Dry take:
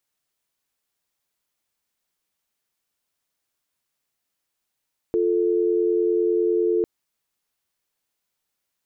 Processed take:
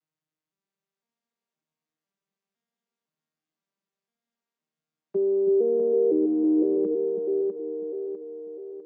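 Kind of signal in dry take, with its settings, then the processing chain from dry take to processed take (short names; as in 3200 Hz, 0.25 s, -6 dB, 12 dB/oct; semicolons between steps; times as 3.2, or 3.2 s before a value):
call progress tone dial tone, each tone -20.5 dBFS 1.70 s
arpeggiated vocoder major triad, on D#3, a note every 0.509 s; on a send: split-band echo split 400 Hz, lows 0.323 s, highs 0.651 s, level -4 dB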